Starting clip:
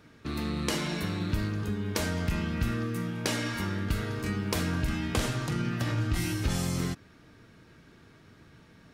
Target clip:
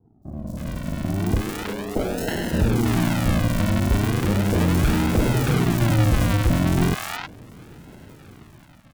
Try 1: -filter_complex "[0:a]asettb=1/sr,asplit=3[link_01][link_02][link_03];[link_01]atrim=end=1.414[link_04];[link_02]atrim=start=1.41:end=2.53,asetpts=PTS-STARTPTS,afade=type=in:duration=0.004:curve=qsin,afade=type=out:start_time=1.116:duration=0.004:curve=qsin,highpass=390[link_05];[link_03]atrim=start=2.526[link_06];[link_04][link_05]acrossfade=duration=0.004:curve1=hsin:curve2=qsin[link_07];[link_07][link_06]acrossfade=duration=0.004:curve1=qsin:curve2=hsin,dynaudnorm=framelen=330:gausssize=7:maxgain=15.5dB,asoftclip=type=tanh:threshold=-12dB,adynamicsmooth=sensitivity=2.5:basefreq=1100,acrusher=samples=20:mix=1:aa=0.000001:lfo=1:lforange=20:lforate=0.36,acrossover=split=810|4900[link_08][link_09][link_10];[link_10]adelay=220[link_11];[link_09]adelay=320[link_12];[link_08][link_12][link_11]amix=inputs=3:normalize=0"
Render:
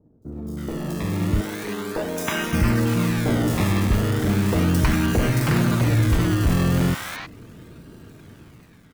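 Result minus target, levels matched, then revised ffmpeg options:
sample-and-hold swept by an LFO: distortion −10 dB
-filter_complex "[0:a]asettb=1/sr,asplit=3[link_01][link_02][link_03];[link_01]atrim=end=1.414[link_04];[link_02]atrim=start=1.41:end=2.53,asetpts=PTS-STARTPTS,afade=type=in:duration=0.004:curve=qsin,afade=type=out:start_time=1.116:duration=0.004:curve=qsin,highpass=390[link_05];[link_03]atrim=start=2.526[link_06];[link_04][link_05]acrossfade=duration=0.004:curve1=hsin:curve2=qsin[link_07];[link_07][link_06]acrossfade=duration=0.004:curve1=qsin:curve2=hsin,dynaudnorm=framelen=330:gausssize=7:maxgain=15.5dB,asoftclip=type=tanh:threshold=-12dB,adynamicsmooth=sensitivity=2.5:basefreq=1100,acrusher=samples=73:mix=1:aa=0.000001:lfo=1:lforange=73:lforate=0.36,acrossover=split=810|4900[link_08][link_09][link_10];[link_10]adelay=220[link_11];[link_09]adelay=320[link_12];[link_08][link_12][link_11]amix=inputs=3:normalize=0"

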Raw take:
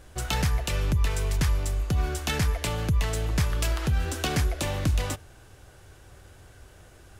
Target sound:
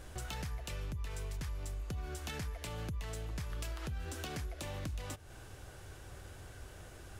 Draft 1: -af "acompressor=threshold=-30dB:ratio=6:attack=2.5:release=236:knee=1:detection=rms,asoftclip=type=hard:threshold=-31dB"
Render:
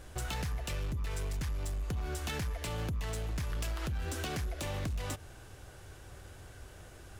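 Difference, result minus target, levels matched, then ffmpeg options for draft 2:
downward compressor: peak gain reduction −6 dB
-af "acompressor=threshold=-37dB:ratio=6:attack=2.5:release=236:knee=1:detection=rms,asoftclip=type=hard:threshold=-31dB"

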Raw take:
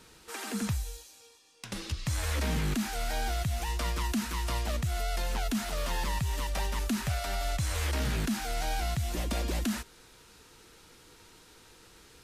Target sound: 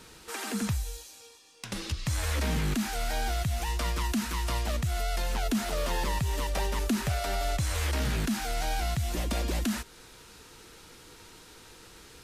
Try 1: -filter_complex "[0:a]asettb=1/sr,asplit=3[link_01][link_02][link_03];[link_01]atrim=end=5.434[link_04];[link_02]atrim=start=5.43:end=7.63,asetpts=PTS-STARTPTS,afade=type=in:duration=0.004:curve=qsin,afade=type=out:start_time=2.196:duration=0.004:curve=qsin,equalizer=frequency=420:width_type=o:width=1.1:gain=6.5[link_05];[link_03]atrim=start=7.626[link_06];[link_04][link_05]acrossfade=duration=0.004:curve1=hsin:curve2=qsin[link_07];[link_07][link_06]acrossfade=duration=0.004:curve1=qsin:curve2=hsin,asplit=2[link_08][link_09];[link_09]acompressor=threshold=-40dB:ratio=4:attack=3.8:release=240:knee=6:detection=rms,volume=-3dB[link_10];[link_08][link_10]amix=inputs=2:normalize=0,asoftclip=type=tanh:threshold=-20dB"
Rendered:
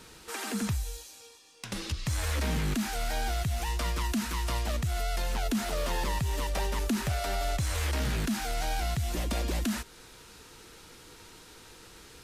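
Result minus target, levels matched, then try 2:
soft clipping: distortion +18 dB
-filter_complex "[0:a]asettb=1/sr,asplit=3[link_01][link_02][link_03];[link_01]atrim=end=5.434[link_04];[link_02]atrim=start=5.43:end=7.63,asetpts=PTS-STARTPTS,afade=type=in:duration=0.004:curve=qsin,afade=type=out:start_time=2.196:duration=0.004:curve=qsin,equalizer=frequency=420:width_type=o:width=1.1:gain=6.5[link_05];[link_03]atrim=start=7.626[link_06];[link_04][link_05]acrossfade=duration=0.004:curve1=hsin:curve2=qsin[link_07];[link_07][link_06]acrossfade=duration=0.004:curve1=qsin:curve2=hsin,asplit=2[link_08][link_09];[link_09]acompressor=threshold=-40dB:ratio=4:attack=3.8:release=240:knee=6:detection=rms,volume=-3dB[link_10];[link_08][link_10]amix=inputs=2:normalize=0,asoftclip=type=tanh:threshold=-10.5dB"

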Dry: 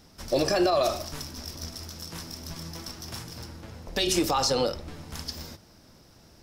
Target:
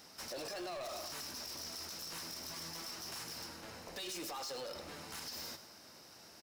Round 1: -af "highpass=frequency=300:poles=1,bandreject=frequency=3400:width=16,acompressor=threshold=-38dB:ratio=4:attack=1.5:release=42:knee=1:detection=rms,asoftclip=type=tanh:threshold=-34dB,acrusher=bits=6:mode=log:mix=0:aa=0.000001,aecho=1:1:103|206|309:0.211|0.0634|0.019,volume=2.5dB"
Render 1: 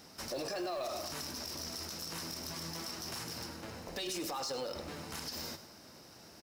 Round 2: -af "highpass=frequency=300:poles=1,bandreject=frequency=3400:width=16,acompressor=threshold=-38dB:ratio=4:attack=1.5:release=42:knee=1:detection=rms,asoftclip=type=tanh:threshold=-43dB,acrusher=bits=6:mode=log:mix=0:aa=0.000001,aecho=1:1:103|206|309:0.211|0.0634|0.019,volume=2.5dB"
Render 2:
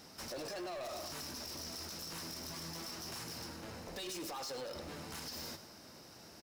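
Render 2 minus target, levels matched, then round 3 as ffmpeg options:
250 Hz band +3.5 dB
-af "highpass=frequency=740:poles=1,bandreject=frequency=3400:width=16,acompressor=threshold=-38dB:ratio=4:attack=1.5:release=42:knee=1:detection=rms,asoftclip=type=tanh:threshold=-43dB,acrusher=bits=6:mode=log:mix=0:aa=0.000001,aecho=1:1:103|206|309:0.211|0.0634|0.019,volume=2.5dB"

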